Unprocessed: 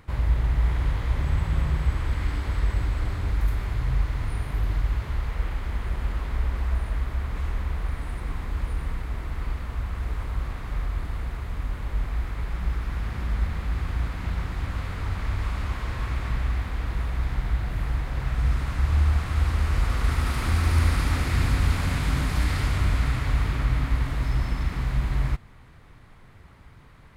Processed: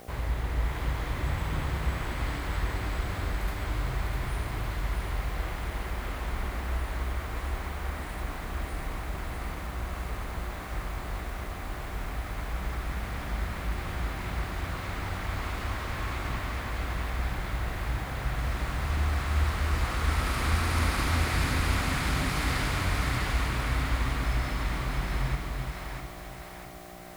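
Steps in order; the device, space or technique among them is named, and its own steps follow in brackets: video cassette with head-switching buzz (mains buzz 60 Hz, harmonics 13, -46 dBFS -1 dB/octave; white noise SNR 32 dB); bass shelf 180 Hz -9.5 dB; two-band feedback delay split 460 Hz, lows 355 ms, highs 650 ms, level -4 dB

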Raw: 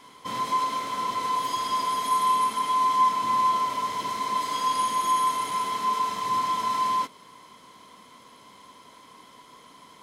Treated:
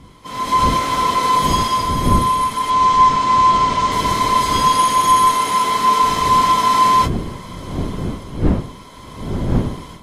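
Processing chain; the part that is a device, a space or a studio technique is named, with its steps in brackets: 2.70–3.92 s: low-pass 7.9 kHz 24 dB/octave; smartphone video outdoors (wind noise 220 Hz -33 dBFS; level rider gain up to 14.5 dB; trim -1 dB; AAC 48 kbps 32 kHz)

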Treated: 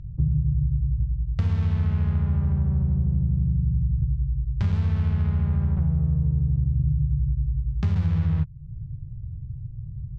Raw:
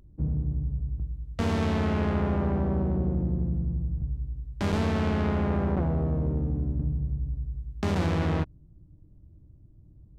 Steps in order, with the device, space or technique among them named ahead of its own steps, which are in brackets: jukebox (low-pass 5.4 kHz 12 dB/octave; resonant low shelf 190 Hz +12.5 dB, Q 3; compression 3:1, threshold -26 dBFS, peak gain reduction 13.5 dB); dynamic bell 640 Hz, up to -6 dB, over -56 dBFS, Q 2.1; trim +2.5 dB

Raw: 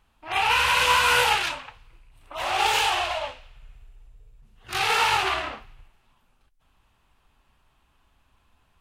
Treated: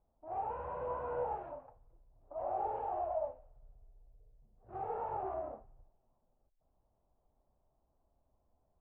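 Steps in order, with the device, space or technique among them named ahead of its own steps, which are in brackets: overdriven synthesiser ladder filter (saturation -15.5 dBFS, distortion -17 dB; four-pole ladder low-pass 730 Hz, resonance 55%); trim -1.5 dB

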